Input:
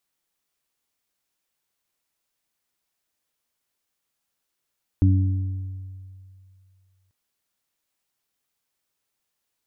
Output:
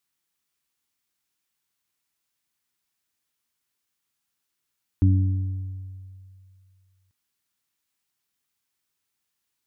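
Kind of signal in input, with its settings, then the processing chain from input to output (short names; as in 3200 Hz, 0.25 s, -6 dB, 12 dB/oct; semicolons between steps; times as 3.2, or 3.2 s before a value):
additive tone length 2.09 s, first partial 94.6 Hz, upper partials -10.5/-7.5 dB, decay 2.38 s, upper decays 1.06/1.33 s, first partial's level -13 dB
HPF 45 Hz; bell 580 Hz -8 dB 0.98 oct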